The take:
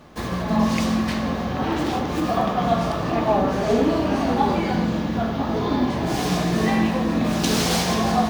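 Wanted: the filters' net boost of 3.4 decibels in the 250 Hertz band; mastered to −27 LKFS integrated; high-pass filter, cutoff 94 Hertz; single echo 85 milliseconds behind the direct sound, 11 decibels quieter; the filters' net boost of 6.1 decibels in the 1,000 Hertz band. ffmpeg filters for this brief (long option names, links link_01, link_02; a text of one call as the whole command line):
ffmpeg -i in.wav -af "highpass=94,equalizer=frequency=250:width_type=o:gain=4,equalizer=frequency=1000:width_type=o:gain=8,aecho=1:1:85:0.282,volume=-9dB" out.wav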